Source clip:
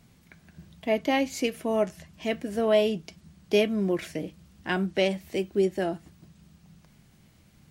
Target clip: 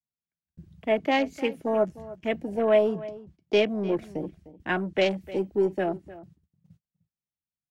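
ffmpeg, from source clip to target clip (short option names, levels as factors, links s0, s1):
-filter_complex "[0:a]afwtdn=0.0158,acrossover=split=310|550|4700[s0][s1][s2][s3];[s0]asoftclip=type=tanh:threshold=0.0211[s4];[s4][s1][s2][s3]amix=inputs=4:normalize=0,agate=range=0.0282:threshold=0.00158:ratio=16:detection=peak,asettb=1/sr,asplit=3[s5][s6][s7];[s5]atrim=end=2.984[s8];[s6]atrim=start=2.98:end=3.68,asetpts=PTS-STARTPTS,afade=t=in:d=0.004:c=qsin,afade=t=out:st=0.696:d=0.004:c=qsin,highshelf=f=8300:g=-11[s9];[s7]atrim=start=3.676[s10];[s8][s9]acrossfade=d=0.004:c1=hsin:c2=qsin[s11];[s11][s10]acrossfade=d=0.004:c1=qsin:c2=hsin,asplit=2[s12][s13];[s13]adelay=303.2,volume=0.141,highshelf=f=4000:g=-6.82[s14];[s12][s14]amix=inputs=2:normalize=0,volume=1.26"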